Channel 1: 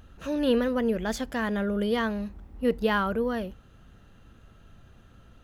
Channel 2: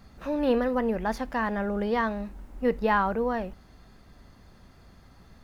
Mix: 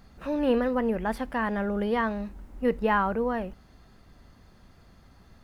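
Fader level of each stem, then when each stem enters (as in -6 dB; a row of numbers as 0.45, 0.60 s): -12.0, -2.0 dB; 0.00, 0.00 s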